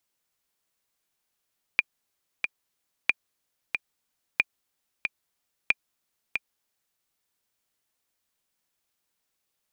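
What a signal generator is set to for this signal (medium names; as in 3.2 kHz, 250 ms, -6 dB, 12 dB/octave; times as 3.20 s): metronome 92 bpm, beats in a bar 2, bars 4, 2.41 kHz, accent 6.5 dB -6.5 dBFS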